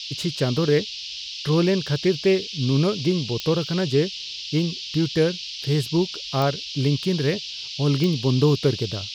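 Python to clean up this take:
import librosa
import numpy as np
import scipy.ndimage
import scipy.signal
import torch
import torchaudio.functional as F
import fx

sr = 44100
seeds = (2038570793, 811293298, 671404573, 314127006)

y = fx.fix_declick_ar(x, sr, threshold=10.0)
y = fx.noise_reduce(y, sr, print_start_s=0.89, print_end_s=1.39, reduce_db=30.0)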